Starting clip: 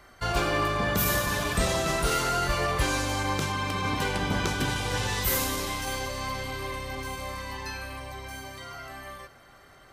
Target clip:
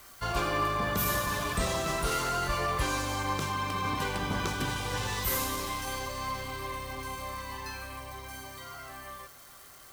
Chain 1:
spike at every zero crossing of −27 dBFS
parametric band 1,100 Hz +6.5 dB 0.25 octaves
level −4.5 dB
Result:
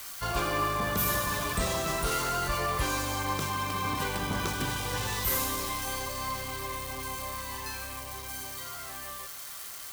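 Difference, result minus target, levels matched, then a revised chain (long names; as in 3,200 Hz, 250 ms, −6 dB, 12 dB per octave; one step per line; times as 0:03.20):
spike at every zero crossing: distortion +11 dB
spike at every zero crossing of −38.5 dBFS
parametric band 1,100 Hz +6.5 dB 0.25 octaves
level −4.5 dB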